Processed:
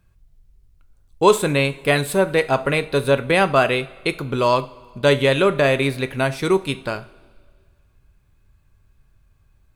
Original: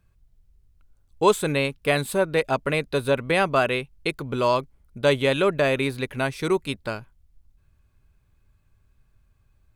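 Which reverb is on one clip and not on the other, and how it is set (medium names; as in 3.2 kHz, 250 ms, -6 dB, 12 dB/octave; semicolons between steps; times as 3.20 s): two-slope reverb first 0.33 s, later 1.9 s, from -18 dB, DRR 10 dB; trim +4 dB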